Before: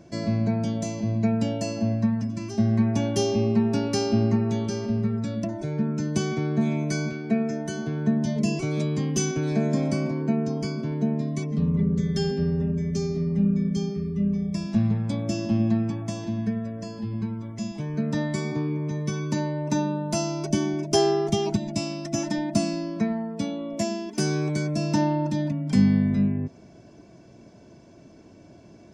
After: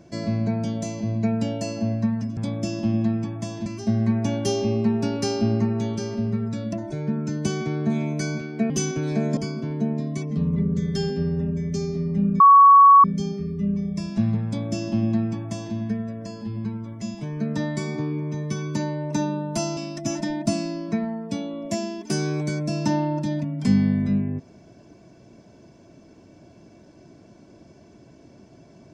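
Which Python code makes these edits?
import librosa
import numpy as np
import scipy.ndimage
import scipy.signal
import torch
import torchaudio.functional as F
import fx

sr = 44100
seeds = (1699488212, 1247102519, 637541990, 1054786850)

y = fx.edit(x, sr, fx.cut(start_s=7.41, length_s=1.69),
    fx.cut(start_s=9.77, length_s=0.81),
    fx.insert_tone(at_s=13.61, length_s=0.64, hz=1120.0, db=-7.5),
    fx.duplicate(start_s=15.03, length_s=1.29, to_s=2.37),
    fx.cut(start_s=20.34, length_s=1.51), tone=tone)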